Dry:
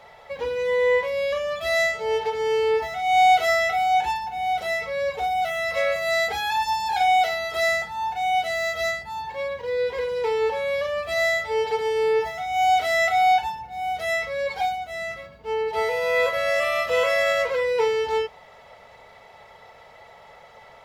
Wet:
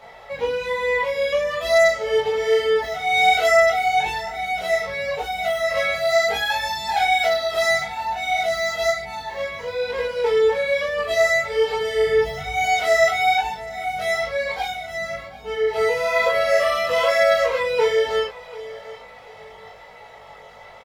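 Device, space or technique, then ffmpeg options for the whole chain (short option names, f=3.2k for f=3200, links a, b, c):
double-tracked vocal: -filter_complex "[0:a]asettb=1/sr,asplit=3[a][b][c];[a]atrim=end=11.634[d];[b]atrim=start=11.63:end=12.64,asetpts=PTS-STARTPTS,afade=t=in:d=0.004:c=qsin,afade=t=out:st=1.006:d=0.004:c=qsin,asubboost=boost=11:cutoff=210[e];[c]atrim=start=12.636[f];[d][e]acrossfade=d=0.004:c1=hsin:c2=qsin[g];[g][f]acrossfade=d=0.004:c1=qsin:c2=hsin,asplit=2[h][i];[i]adelay=21,volume=-2dB[j];[h][j]amix=inputs=2:normalize=0,aecho=1:1:738|1476|2214:0.119|0.0416|0.0146,flanger=delay=16.5:depth=4.2:speed=1.1,volume=5dB"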